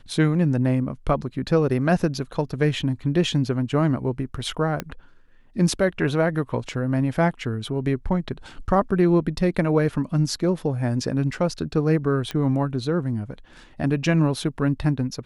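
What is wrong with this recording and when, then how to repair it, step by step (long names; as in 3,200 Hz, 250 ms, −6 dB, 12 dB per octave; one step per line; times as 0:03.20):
0:04.80: click −12 dBFS
0:12.31: click −14 dBFS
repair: click removal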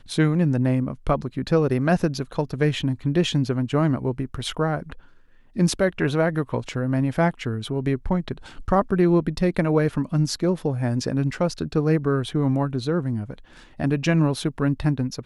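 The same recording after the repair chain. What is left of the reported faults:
0:04.80: click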